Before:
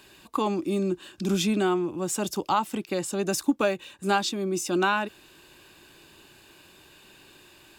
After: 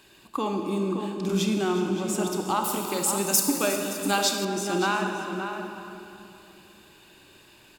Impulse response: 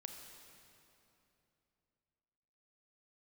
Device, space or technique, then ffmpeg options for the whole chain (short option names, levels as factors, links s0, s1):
cave: -filter_complex "[0:a]aecho=1:1:361:0.168[s0];[1:a]atrim=start_sample=2205[s1];[s0][s1]afir=irnorm=-1:irlink=0,asettb=1/sr,asplit=3[s2][s3][s4];[s2]atrim=end=2.644[s5];[s3]atrim=start=2.64:end=4.45,asetpts=PTS-STARTPTS,afade=t=in:d=0.004:c=qsin,afade=t=out:st=1.806:d=0.004:c=qsin,aemphasis=mode=production:type=75fm[s6];[s4]atrim=start=4.446[s7];[s5][s6]acrossfade=d=0.004:c1=hsin:c2=qsin[s8];[s8][s7]acrossfade=d=0.004:c1=qsin:c2=hsin,asplit=2[s9][s10];[s10]adelay=571.4,volume=0.447,highshelf=f=4000:g=-12.9[s11];[s9][s11]amix=inputs=2:normalize=0,volume=1.41"